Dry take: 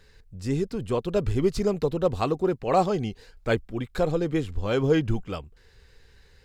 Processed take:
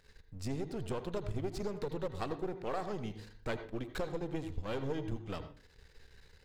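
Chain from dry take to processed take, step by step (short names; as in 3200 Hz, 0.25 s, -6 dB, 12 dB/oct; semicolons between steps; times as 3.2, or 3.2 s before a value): half-wave gain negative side -12 dB; compressor, threshold -31 dBFS, peak gain reduction 12.5 dB; on a send: reverb RT60 0.40 s, pre-delay 73 ms, DRR 10 dB; on the sum: gain -2 dB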